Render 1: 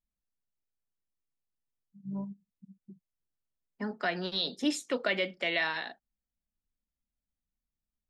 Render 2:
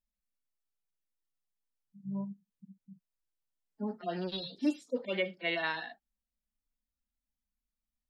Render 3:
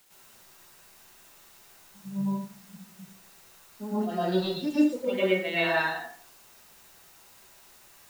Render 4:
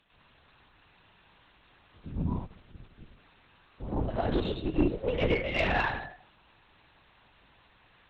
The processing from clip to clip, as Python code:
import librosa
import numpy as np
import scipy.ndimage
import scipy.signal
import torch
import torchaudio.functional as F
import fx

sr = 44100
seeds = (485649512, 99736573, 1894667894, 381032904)

y1 = fx.hpss_only(x, sr, part='harmonic')
y2 = fx.quant_dither(y1, sr, seeds[0], bits=10, dither='triangular')
y2 = fx.rev_plate(y2, sr, seeds[1], rt60_s=0.53, hf_ratio=0.45, predelay_ms=95, drr_db=-9.5)
y2 = y2 * librosa.db_to_amplitude(-2.0)
y3 = fx.lpc_vocoder(y2, sr, seeds[2], excitation='whisper', order=8)
y3 = fx.tube_stage(y3, sr, drive_db=16.0, bias=0.35)